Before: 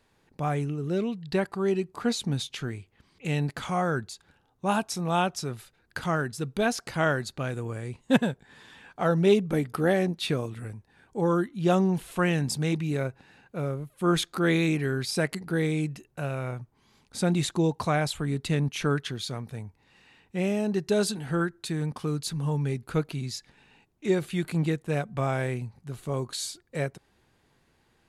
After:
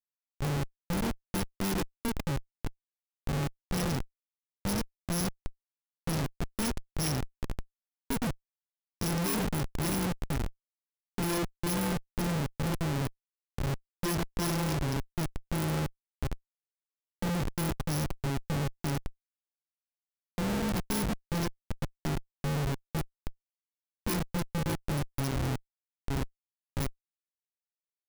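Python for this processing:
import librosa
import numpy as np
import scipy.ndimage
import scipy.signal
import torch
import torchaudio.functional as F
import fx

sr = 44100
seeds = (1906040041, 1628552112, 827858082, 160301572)

p1 = fx.bit_reversed(x, sr, seeds[0], block=64)
p2 = fx.spec_topn(p1, sr, count=32)
p3 = p2 + fx.echo_single(p2, sr, ms=108, db=-10.0, dry=0)
y = fx.schmitt(p3, sr, flips_db=-24.5)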